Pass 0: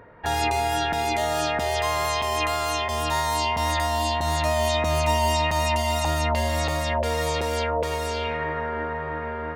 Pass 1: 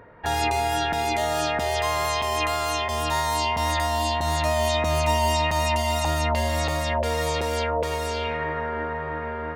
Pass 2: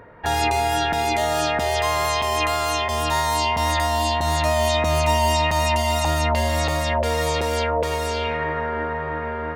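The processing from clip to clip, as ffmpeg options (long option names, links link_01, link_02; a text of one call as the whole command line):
ffmpeg -i in.wav -af anull out.wav
ffmpeg -i in.wav -af "acontrast=55,volume=-3dB" out.wav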